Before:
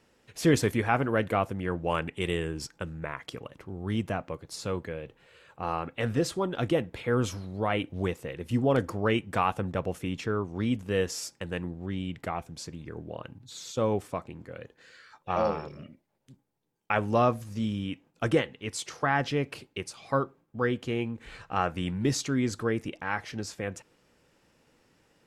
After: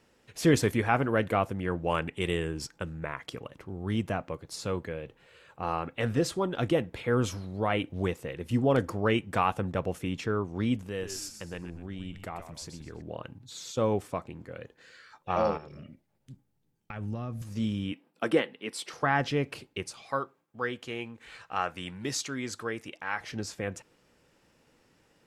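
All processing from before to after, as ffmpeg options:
-filter_complex "[0:a]asettb=1/sr,asplit=3[a][b][c];[a]atrim=end=10.864[d];[b]atrim=start=10.86:end=13.02,asetpts=PTS-STARTPTS,afade=t=in:d=0.004:c=qsin,afade=t=out:st=2.156:d=0.004:c=qsin,acompressor=threshold=-44dB:ratio=1.5:attack=3.2:release=140:knee=1:detection=peak,highshelf=f=5.7k:g=4,asplit=5[e][f][g][h][i];[f]adelay=124,afreqshift=-87,volume=-9.5dB[j];[g]adelay=248,afreqshift=-174,volume=-18.9dB[k];[h]adelay=372,afreqshift=-261,volume=-28.2dB[l];[i]adelay=496,afreqshift=-348,volume=-37.6dB[m];[e][j][k][l][m]amix=inputs=5:normalize=0,atrim=end_sample=95256[n];[c]atrim=start=13.016[o];[d][n]acrossfade=d=0.004:c1=hsin:c2=qsin[p];[p][o]acrossfade=d=0.004:c1=qsin:c2=hsin,asettb=1/sr,asplit=3[q][r][s];[q]atrim=end=15.574[t];[r]atrim=start=15.57:end=17.42,asetpts=PTS-STARTPTS,afade=t=in:d=0.004:c=qsin,afade=t=out:st=1.846:d=0.004:c=qsin,acompressor=threshold=-44dB:ratio=2.5:attack=3.2:release=140:knee=1:detection=peak,bandreject=f=1k:w=11,asubboost=boost=7.5:cutoff=250[u];[s]atrim=start=17.416[v];[t][u]acrossfade=d=0.004:c1=hsin:c2=qsin[w];[w][v]acrossfade=d=0.004:c1=qsin:c2=hsin,asettb=1/sr,asplit=3[x][y][z];[x]atrim=end=17.924[aa];[y]atrim=start=17.92:end=18.93,asetpts=PTS-STARTPTS,afade=t=in:d=0.004:c=qsin,afade=t=out:st=1.006:d=0.004:c=qsin,highpass=f=190:w=0.5412,highpass=f=190:w=1.3066,equalizer=f=6.6k:w=4.4:g=-12.5[ab];[z]atrim=start=18.926[ac];[aa][ab]acrossfade=d=0.004:c1=hsin:c2=qsin[ad];[ad][ac]acrossfade=d=0.004:c1=qsin:c2=hsin,asettb=1/sr,asplit=3[ae][af][ag];[ae]atrim=end=20.024[ah];[af]atrim=start=20.02:end=23.21,asetpts=PTS-STARTPTS,afade=t=in:d=0.004:c=qsin,afade=t=out:st=3.186:d=0.004:c=qsin,highpass=52,lowshelf=f=460:g=-12[ai];[ag]atrim=start=23.206[aj];[ah][ai]acrossfade=d=0.004:c1=hsin:c2=qsin[ak];[ak][aj]acrossfade=d=0.004:c1=qsin:c2=hsin"

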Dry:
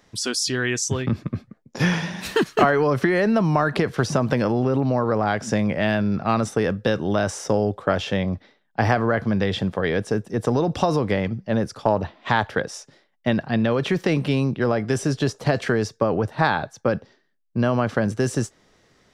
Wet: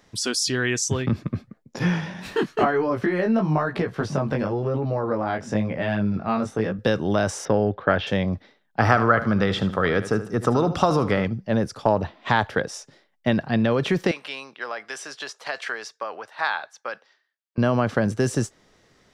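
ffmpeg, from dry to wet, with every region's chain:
-filter_complex "[0:a]asettb=1/sr,asplit=3[a][b][c];[a]atrim=end=1.794[d];[b]atrim=start=1.79:end=6.79,asetpts=PTS-STARTPTS,afade=t=in:d=0.004:c=qsin,afade=t=out:st=4.996:d=0.004:c=qsin,highshelf=f=3.8k:g=-9,flanger=delay=16.5:depth=6:speed=1[e];[c]atrim=start=6.786[f];[d][e]acrossfade=d=0.004:c1=hsin:c2=qsin[g];[g][f]acrossfade=d=0.004:c1=qsin:c2=hsin,asettb=1/sr,asplit=3[h][i][j];[h]atrim=end=7.454[k];[i]atrim=start=7.45:end=8.07,asetpts=PTS-STARTPTS,afade=t=in:d=0.004:c=qsin,afade=t=out:st=0.616:d=0.004:c=qsin,lowpass=f=3.9k:w=0.5412,lowpass=f=3.9k:w=1.3066,equalizer=f=1.6k:w=3.5:g=6.5[l];[j]atrim=start=8.066[m];[k][l]acrossfade=d=0.004:c1=hsin:c2=qsin[n];[n][m]acrossfade=d=0.004:c1=qsin:c2=hsin,asettb=1/sr,asplit=3[o][p][q];[o]atrim=end=8.804[r];[p]atrim=start=8.8:end=11.25,asetpts=PTS-STARTPTS,afade=t=in:d=0.004:c=qsin,afade=t=out:st=2.446:d=0.004:c=qsin,equalizer=f=1.3k:t=o:w=0.3:g=14,aecho=1:1:77|154|231:0.224|0.0694|0.0215,atrim=end_sample=108045[s];[q]atrim=start=11.246[t];[r][s]acrossfade=d=0.004:c1=hsin:c2=qsin[u];[u][t]acrossfade=d=0.004:c1=qsin:c2=hsin,asettb=1/sr,asplit=3[v][w][x];[v]atrim=end=14.114[y];[w]atrim=start=14.11:end=17.58,asetpts=PTS-STARTPTS,afade=t=in:d=0.004:c=qsin,afade=t=out:st=3.466:d=0.004:c=qsin,highpass=1.1k,highshelf=f=7.1k:g=-9[z];[x]atrim=start=17.576[aa];[y][z]acrossfade=d=0.004:c1=hsin:c2=qsin[ab];[ab][aa]acrossfade=d=0.004:c1=qsin:c2=hsin"

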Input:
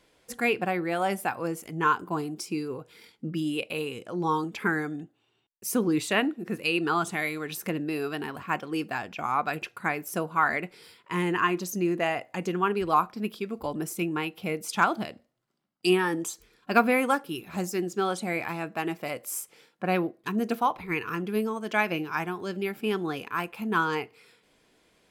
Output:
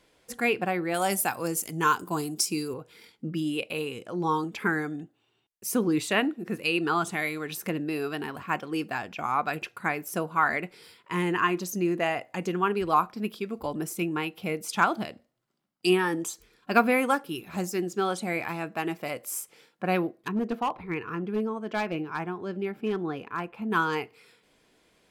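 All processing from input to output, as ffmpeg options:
-filter_complex "[0:a]asettb=1/sr,asplit=3[a][b][c];[a]atrim=end=0.944[d];[b]atrim=start=0.94:end=2.74,asetpts=PTS-STARTPTS,afade=t=in:d=0.004:c=qsin,afade=t=out:st=1.796:d=0.004:c=qsin,highpass=58,bass=f=250:g=1,treble=f=4k:g=14[e];[c]atrim=start=2.736[f];[d][e]acrossfade=d=0.004:c1=hsin:c2=qsin[g];[g][f]acrossfade=d=0.004:c1=qsin:c2=hsin,asettb=1/sr,asplit=3[h][i][j];[h]atrim=end=20.284[k];[i]atrim=start=20.28:end=23.71,asetpts=PTS-STARTPTS,afade=t=in:d=0.004:c=qsin,afade=t=out:st=3.426:d=0.004:c=qsin,lowpass=f=1.3k:p=1,asoftclip=type=hard:threshold=-22dB[l];[j]atrim=start=23.706[m];[k][l]acrossfade=d=0.004:c1=hsin:c2=qsin[n];[n][m]acrossfade=d=0.004:c1=qsin:c2=hsin"

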